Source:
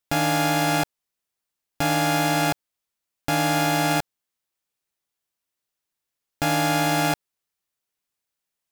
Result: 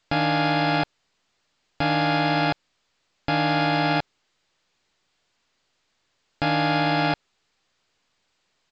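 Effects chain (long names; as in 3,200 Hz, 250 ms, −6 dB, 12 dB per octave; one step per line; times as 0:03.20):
downsampling to 11,025 Hz
A-law companding 128 kbit/s 16,000 Hz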